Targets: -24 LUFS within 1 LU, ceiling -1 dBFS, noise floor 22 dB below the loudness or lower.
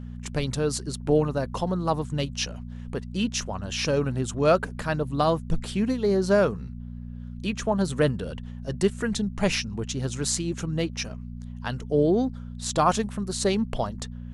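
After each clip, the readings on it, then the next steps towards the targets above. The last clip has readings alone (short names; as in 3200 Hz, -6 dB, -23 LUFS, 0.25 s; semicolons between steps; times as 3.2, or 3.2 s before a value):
hum 60 Hz; harmonics up to 240 Hz; hum level -34 dBFS; loudness -26.5 LUFS; peak -8.0 dBFS; loudness target -24.0 LUFS
-> de-hum 60 Hz, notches 4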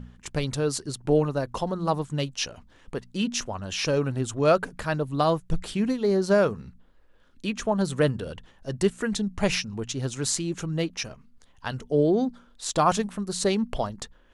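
hum none; loudness -26.5 LUFS; peak -8.5 dBFS; loudness target -24.0 LUFS
-> gain +2.5 dB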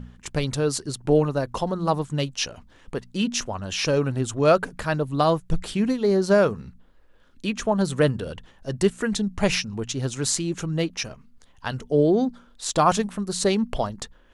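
loudness -24.0 LUFS; peak -6.0 dBFS; noise floor -54 dBFS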